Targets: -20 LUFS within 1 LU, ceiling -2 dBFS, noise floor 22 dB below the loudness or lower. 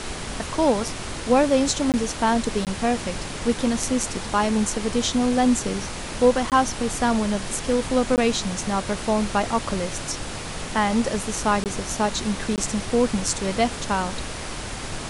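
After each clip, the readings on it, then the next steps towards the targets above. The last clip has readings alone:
dropouts 6; longest dropout 18 ms; noise floor -33 dBFS; noise floor target -46 dBFS; loudness -23.5 LUFS; peak level -6.0 dBFS; loudness target -20.0 LUFS
-> interpolate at 1.92/2.65/6.50/8.16/11.64/12.56 s, 18 ms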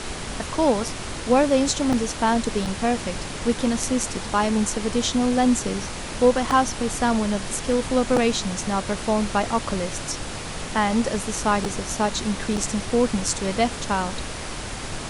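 dropouts 0; noise floor -33 dBFS; noise floor target -46 dBFS
-> noise print and reduce 13 dB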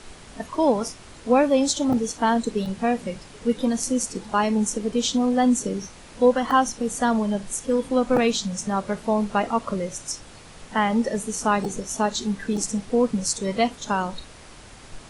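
noise floor -45 dBFS; noise floor target -46 dBFS
-> noise print and reduce 6 dB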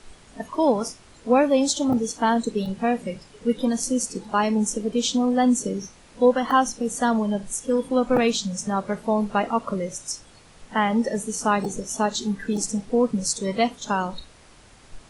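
noise floor -51 dBFS; loudness -23.5 LUFS; peak level -6.5 dBFS; loudness target -20.0 LUFS
-> trim +3.5 dB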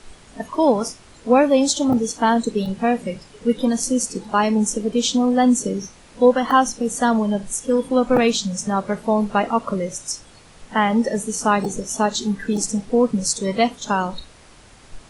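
loudness -20.0 LUFS; peak level -3.0 dBFS; noise floor -47 dBFS

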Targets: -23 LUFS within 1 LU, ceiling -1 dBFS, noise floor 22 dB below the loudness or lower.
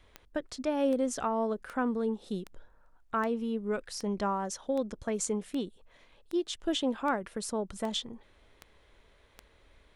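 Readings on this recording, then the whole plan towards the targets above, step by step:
clicks found 13; loudness -33.0 LUFS; peak level -15.5 dBFS; loudness target -23.0 LUFS
-> de-click; trim +10 dB

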